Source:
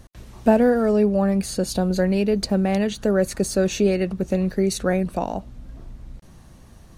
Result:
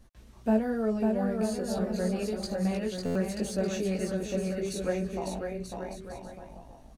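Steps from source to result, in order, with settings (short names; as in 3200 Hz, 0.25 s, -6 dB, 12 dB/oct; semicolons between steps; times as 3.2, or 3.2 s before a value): chorus voices 6, 0.59 Hz, delay 18 ms, depth 4.8 ms; bouncing-ball echo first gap 0.55 s, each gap 0.7×, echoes 5; stuck buffer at 3.05, samples 512, times 8; gain -8.5 dB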